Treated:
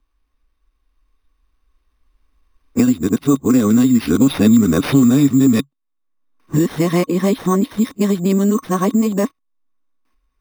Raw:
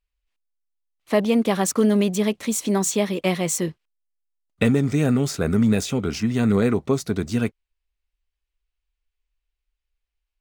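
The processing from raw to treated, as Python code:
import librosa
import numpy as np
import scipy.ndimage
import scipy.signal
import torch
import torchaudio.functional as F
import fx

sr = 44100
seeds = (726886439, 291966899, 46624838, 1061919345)

y = x[::-1].copy()
y = fx.doppler_pass(y, sr, speed_mps=16, closest_m=6.9, pass_at_s=4.69)
y = fx.dynamic_eq(y, sr, hz=140.0, q=7.7, threshold_db=-44.0, ratio=4.0, max_db=5)
y = fx.env_lowpass(y, sr, base_hz=1900.0, full_db=-18.5)
y = fx.high_shelf(y, sr, hz=4700.0, db=5.0)
y = fx.small_body(y, sr, hz=(270.0, 1100.0, 3600.0), ring_ms=45, db=15)
y = np.repeat(y[::6], 6)[:len(y)]
y = fx.band_squash(y, sr, depth_pct=100)
y = F.gain(torch.from_numpy(y), 5.0).numpy()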